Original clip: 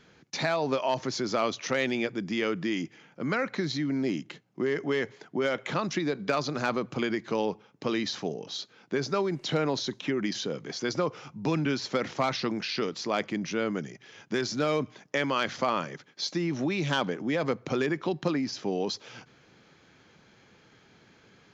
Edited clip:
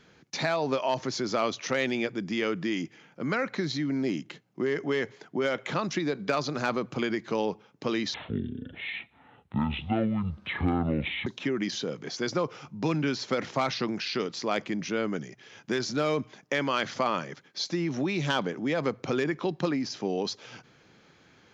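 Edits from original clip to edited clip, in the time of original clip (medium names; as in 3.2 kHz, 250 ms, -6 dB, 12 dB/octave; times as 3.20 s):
8.14–9.89 s: speed 56%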